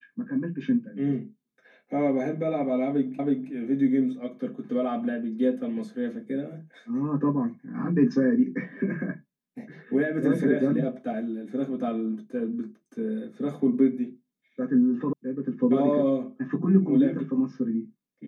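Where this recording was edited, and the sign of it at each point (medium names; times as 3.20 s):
3.19 s: repeat of the last 0.32 s
15.13 s: sound stops dead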